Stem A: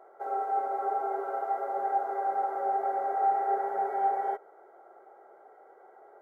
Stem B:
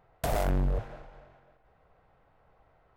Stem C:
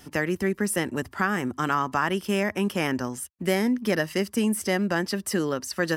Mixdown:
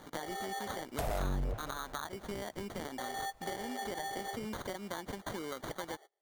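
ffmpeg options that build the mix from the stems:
-filter_complex "[0:a]volume=-2dB,asplit=3[a][b][c];[a]atrim=end=0.82,asetpts=PTS-STARTPTS,afade=t=out:st=0.816:d=0.004:c=hsin[d];[b]atrim=start=0.82:end=2.98,asetpts=PTS-STARTPTS,volume=0[e];[c]atrim=start=2.98,asetpts=PTS-STARTPTS,afade=t=in:d=0.004:c=hsin[f];[d][e][f]concat=n=3:v=0:a=1[g];[1:a]acrusher=bits=11:mix=0:aa=0.000001,adelay=750,volume=2.5dB[h];[2:a]acrusher=bits=9:dc=4:mix=0:aa=0.000001,highpass=f=580:p=1,volume=-2dB,asplit=2[i][j];[j]apad=whole_len=274108[k];[g][k]sidechaingate=range=-33dB:threshold=-42dB:ratio=16:detection=peak[l];[l][i]amix=inputs=2:normalize=0,acrusher=samples=17:mix=1:aa=0.000001,acompressor=threshold=-34dB:ratio=3,volume=0dB[m];[h][m]amix=inputs=2:normalize=0,acompressor=threshold=-39dB:ratio=2"

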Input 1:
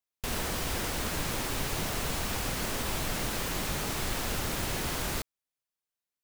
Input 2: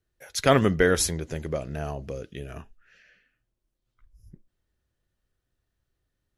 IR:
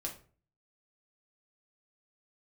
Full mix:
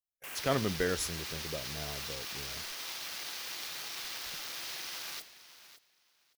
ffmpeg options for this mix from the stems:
-filter_complex "[0:a]afwtdn=0.01,aderivative,alimiter=level_in=12dB:limit=-24dB:level=0:latency=1:release=30,volume=-12dB,volume=2.5dB,asplit=3[a][b][c];[b]volume=-3.5dB[d];[c]volume=-11dB[e];[1:a]agate=range=-23dB:threshold=-51dB:ratio=16:detection=peak,volume=-11dB[f];[2:a]atrim=start_sample=2205[g];[d][g]afir=irnorm=-1:irlink=0[h];[e]aecho=0:1:567|1134|1701:1|0.17|0.0289[i];[a][f][h][i]amix=inputs=4:normalize=0"

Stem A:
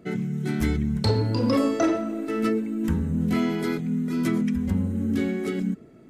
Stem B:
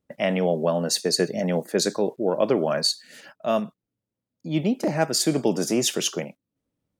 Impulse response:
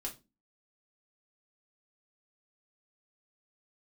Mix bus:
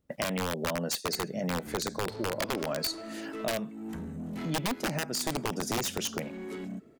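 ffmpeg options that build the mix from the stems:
-filter_complex "[0:a]highpass=f=220:p=1,asoftclip=type=tanh:threshold=-27dB,adelay=1050,volume=-6dB[a];[1:a]lowshelf=f=65:g=11.5,alimiter=limit=-13dB:level=0:latency=1:release=421,aeval=exprs='(mod(6.31*val(0)+1,2)-1)/6.31':c=same,volume=2dB[b];[a][b]amix=inputs=2:normalize=0,acompressor=threshold=-33dB:ratio=2.5"

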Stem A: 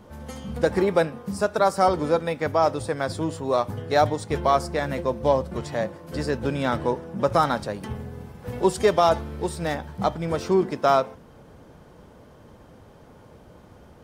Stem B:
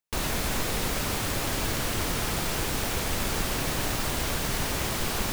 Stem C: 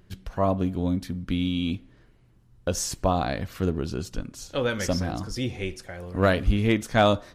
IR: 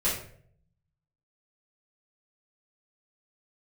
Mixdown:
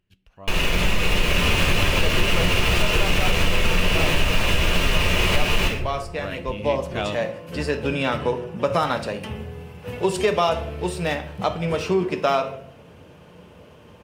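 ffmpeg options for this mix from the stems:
-filter_complex "[0:a]highpass=62,adelay=1400,volume=-12dB,asplit=2[a][b];[b]volume=-15dB[c];[1:a]highshelf=f=6.6k:g=-11,alimiter=limit=-21.5dB:level=0:latency=1:release=35,adelay=350,volume=0.5dB,asplit=2[d][e];[e]volume=-4.5dB[f];[2:a]volume=-19.5dB[g];[3:a]atrim=start_sample=2205[h];[c][f]amix=inputs=2:normalize=0[i];[i][h]afir=irnorm=-1:irlink=0[j];[a][d][g][j]amix=inputs=4:normalize=0,dynaudnorm=f=120:g=17:m=11.5dB,equalizer=f=2.7k:t=o:w=0.49:g=13.5,acompressor=threshold=-16dB:ratio=3"

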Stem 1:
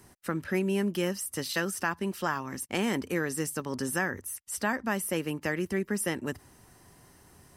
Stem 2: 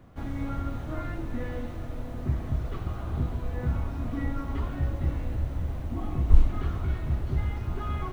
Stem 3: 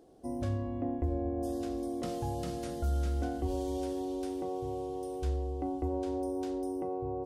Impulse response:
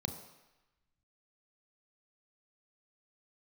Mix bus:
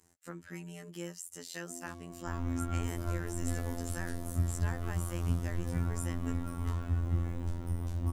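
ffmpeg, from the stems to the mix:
-filter_complex "[0:a]equalizer=f=7.1k:t=o:w=0.31:g=14.5,volume=-10.5dB[a];[1:a]flanger=delay=20:depth=2.9:speed=0.56,adelay=2100,volume=1.5dB,asplit=2[b][c];[c]volume=-15dB[d];[2:a]aemphasis=mode=production:type=bsi,adelay=1450,volume=-7dB[e];[3:a]atrim=start_sample=2205[f];[d][f]afir=irnorm=-1:irlink=0[g];[a][b][e][g]amix=inputs=4:normalize=0,afftfilt=real='hypot(re,im)*cos(PI*b)':imag='0':win_size=2048:overlap=0.75"

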